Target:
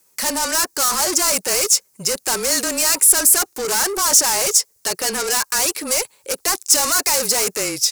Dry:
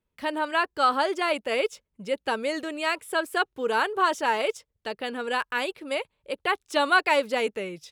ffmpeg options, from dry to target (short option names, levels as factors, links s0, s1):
-filter_complex "[0:a]afreqshift=-25,asplit=2[s0][s1];[s1]highpass=f=720:p=1,volume=50.1,asoftclip=type=tanh:threshold=0.376[s2];[s0][s2]amix=inputs=2:normalize=0,lowpass=f=4800:p=1,volume=0.501,aexciter=amount=11.5:drive=5:freq=4900,volume=0.398"